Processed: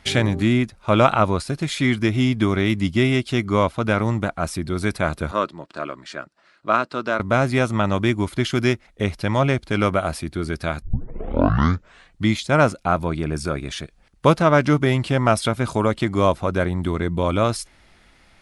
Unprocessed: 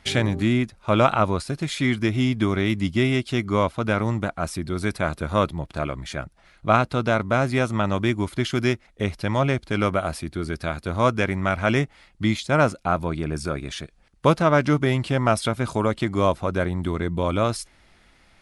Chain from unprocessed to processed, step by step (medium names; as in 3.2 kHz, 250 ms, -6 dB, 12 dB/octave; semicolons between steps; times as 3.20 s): 5.31–7.20 s: cabinet simulation 330–7400 Hz, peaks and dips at 480 Hz -5 dB, 780 Hz -9 dB, 2.2 kHz -7 dB, 3.4 kHz -6 dB, 6.3 kHz -7 dB; 10.82 s: tape start 1.43 s; trim +2.5 dB